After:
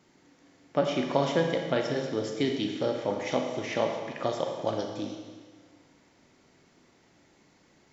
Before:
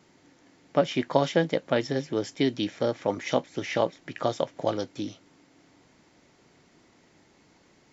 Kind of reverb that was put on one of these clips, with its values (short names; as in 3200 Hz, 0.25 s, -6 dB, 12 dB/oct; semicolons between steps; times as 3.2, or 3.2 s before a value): Schroeder reverb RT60 1.5 s, combs from 28 ms, DRR 2.5 dB; gain -3.5 dB